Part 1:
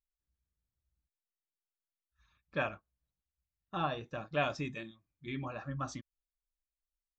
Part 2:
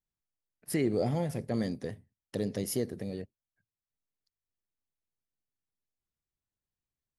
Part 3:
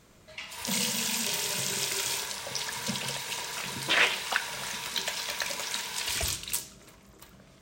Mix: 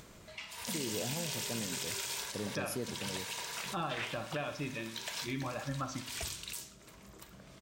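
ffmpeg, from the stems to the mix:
-filter_complex "[0:a]alimiter=level_in=2.5dB:limit=-24dB:level=0:latency=1:release=375,volume=-2.5dB,volume=2dB,asplit=3[a][b][c];[b]volume=-11.5dB[d];[1:a]volume=-5.5dB[e];[2:a]acompressor=mode=upward:threshold=-41dB:ratio=2.5,volume=-5dB[f];[c]apad=whole_len=335638[g];[f][g]sidechaincompress=threshold=-49dB:ratio=4:attack=11:release=342[h];[d]aecho=0:1:62|124|186|248|310|372|434|496:1|0.53|0.281|0.149|0.0789|0.0418|0.0222|0.0117[i];[a][e][h][i]amix=inputs=4:normalize=0,alimiter=level_in=2.5dB:limit=-24dB:level=0:latency=1:release=67,volume=-2.5dB"

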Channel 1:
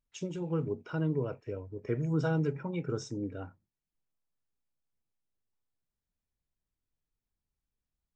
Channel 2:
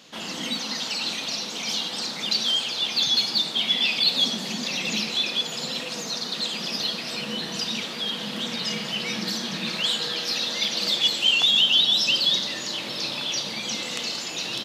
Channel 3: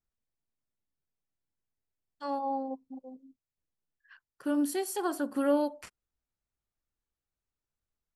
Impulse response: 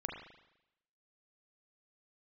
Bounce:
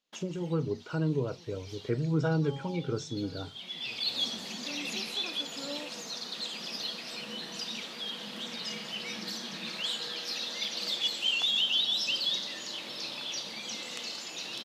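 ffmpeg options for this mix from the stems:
-filter_complex "[0:a]volume=1.5dB,asplit=3[a][b][c];[b]volume=-24dB[d];[1:a]equalizer=f=76:w=0.74:g=-10.5,volume=-9dB,asplit=2[e][f];[f]volume=-23.5dB[g];[2:a]adelay=200,volume=-15.5dB[h];[c]apad=whole_len=645630[i];[e][i]sidechaincompress=threshold=-49dB:ratio=4:attack=6.7:release=636[j];[d][g]amix=inputs=2:normalize=0,aecho=0:1:983:1[k];[a][j][h][k]amix=inputs=4:normalize=0,agate=range=-25dB:threshold=-56dB:ratio=16:detection=peak"

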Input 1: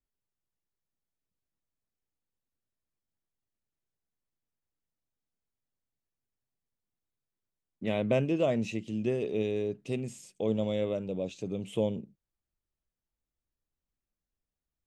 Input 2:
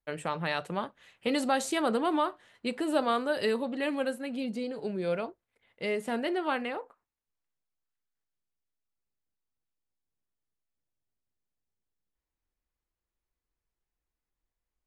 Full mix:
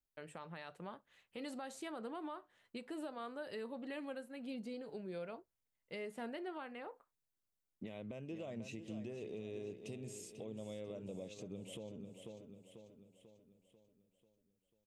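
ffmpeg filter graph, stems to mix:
-filter_complex "[0:a]highshelf=f=6.9k:g=6.5,acompressor=threshold=-34dB:ratio=4,volume=-4.5dB,asplit=2[a][b];[b]volume=-11dB[c];[1:a]agate=range=-33dB:threshold=-56dB:ratio=3:detection=peak,adynamicequalizer=threshold=0.00708:dfrequency=2500:dqfactor=0.7:tfrequency=2500:tqfactor=0.7:attack=5:release=100:ratio=0.375:range=2:mode=cutabove:tftype=highshelf,adelay=100,volume=-10dB[d];[c]aecho=0:1:492|984|1476|1968|2460|2952|3444:1|0.5|0.25|0.125|0.0625|0.0312|0.0156[e];[a][d][e]amix=inputs=3:normalize=0,alimiter=level_in=12dB:limit=-24dB:level=0:latency=1:release=337,volume=-12dB"

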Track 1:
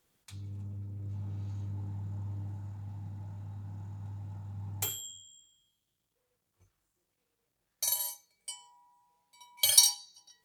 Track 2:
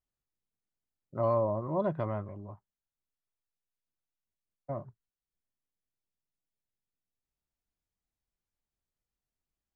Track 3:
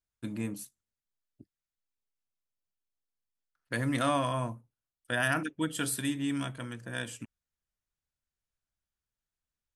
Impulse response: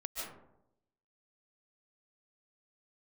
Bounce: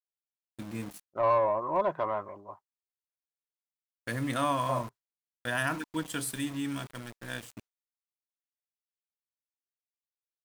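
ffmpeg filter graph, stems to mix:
-filter_complex "[1:a]bass=f=250:g=-11,treble=f=4k:g=6,asplit=2[a][b];[b]highpass=f=720:p=1,volume=12dB,asoftclip=type=tanh:threshold=-19dB[c];[a][c]amix=inputs=2:normalize=0,lowpass=f=3.1k:p=1,volume=-6dB,volume=-3dB[d];[2:a]aeval=exprs='val(0)*gte(abs(val(0)),0.0106)':c=same,adelay=350,volume=-5.5dB[e];[d][e]amix=inputs=2:normalize=0,adynamicequalizer=threshold=0.00316:dfrequency=1000:dqfactor=4.3:tfrequency=1000:tqfactor=4.3:attack=5:release=100:ratio=0.375:range=3:mode=boostabove:tftype=bell,agate=range=-33dB:threshold=-48dB:ratio=3:detection=peak,dynaudnorm=f=170:g=7:m=3.5dB"

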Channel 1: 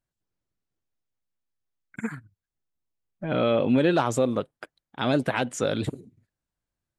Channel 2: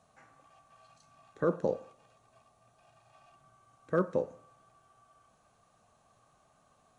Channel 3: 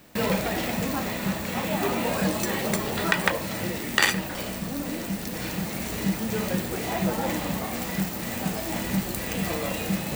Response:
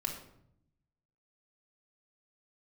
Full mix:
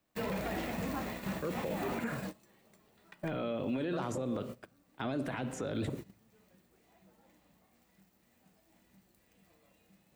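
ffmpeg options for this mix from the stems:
-filter_complex "[0:a]volume=-3.5dB,asplit=3[a][b][c];[b]volume=-10dB[d];[1:a]volume=-1.5dB[e];[2:a]volume=-9.5dB,afade=t=out:st=1.9:d=0.5:silence=0.266073,asplit=2[f][g];[g]volume=-14dB[h];[c]apad=whole_len=447705[i];[f][i]sidechaincompress=threshold=-42dB:ratio=8:attack=30:release=105[j];[3:a]atrim=start_sample=2205[k];[d][h]amix=inputs=2:normalize=0[l];[l][k]afir=irnorm=-1:irlink=0[m];[a][e][j][m]amix=inputs=4:normalize=0,agate=range=-19dB:threshold=-37dB:ratio=16:detection=peak,acrossover=split=340|2600[n][o][p];[n]acompressor=threshold=-32dB:ratio=4[q];[o]acompressor=threshold=-32dB:ratio=4[r];[p]acompressor=threshold=-49dB:ratio=4[s];[q][r][s]amix=inputs=3:normalize=0,alimiter=level_in=3dB:limit=-24dB:level=0:latency=1:release=14,volume=-3dB"

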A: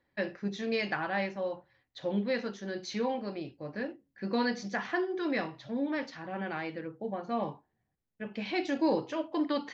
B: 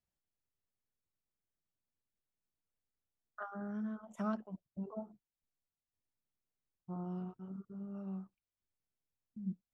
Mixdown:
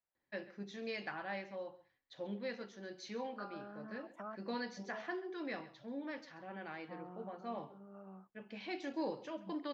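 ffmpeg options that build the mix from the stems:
-filter_complex "[0:a]adelay=150,volume=-10dB,asplit=2[a][b];[b]volume=-17dB[c];[1:a]acrossover=split=430 2400:gain=0.251 1 0.126[d][e][f];[d][e][f]amix=inputs=3:normalize=0,acompressor=threshold=-47dB:ratio=2.5,volume=1.5dB[g];[c]aecho=0:1:134:1[h];[a][g][h]amix=inputs=3:normalize=0,lowshelf=f=150:g=-7"

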